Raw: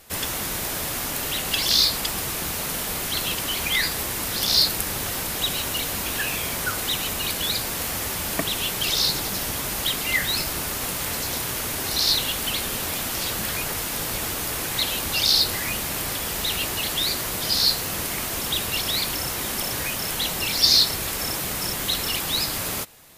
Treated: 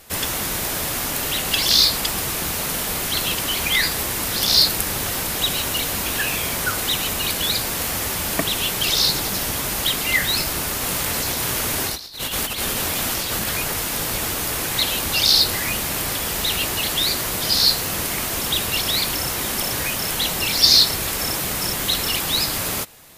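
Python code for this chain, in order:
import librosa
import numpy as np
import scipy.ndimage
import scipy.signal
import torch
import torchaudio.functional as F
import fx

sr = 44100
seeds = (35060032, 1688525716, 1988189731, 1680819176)

y = fx.over_compress(x, sr, threshold_db=-28.0, ratio=-0.5, at=(10.86, 13.49))
y = y * 10.0 ** (3.5 / 20.0)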